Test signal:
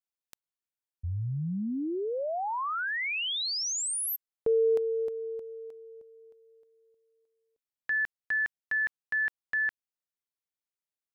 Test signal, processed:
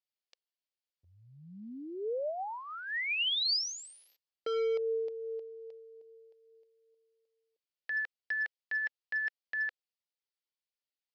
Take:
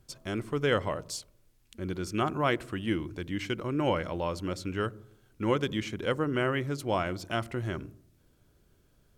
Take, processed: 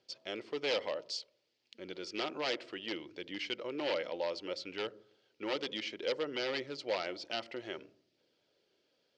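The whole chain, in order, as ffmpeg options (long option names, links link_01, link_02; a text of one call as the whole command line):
ffmpeg -i in.wav -af "aphaser=in_gain=1:out_gain=1:delay=4.2:decay=0.21:speed=0.61:type=triangular,aeval=exprs='0.0708*(abs(mod(val(0)/0.0708+3,4)-2)-1)':channel_layout=same,highpass=490,equalizer=frequency=510:width_type=q:width=4:gain=4,equalizer=frequency=720:width_type=q:width=4:gain=-3,equalizer=frequency=1100:width_type=q:width=4:gain=-10,equalizer=frequency=1500:width_type=q:width=4:gain=-7,equalizer=frequency=3000:width_type=q:width=4:gain=3,equalizer=frequency=4700:width_type=q:width=4:gain=6,lowpass=frequency=5200:width=0.5412,lowpass=frequency=5200:width=1.3066,volume=-1.5dB" out.wav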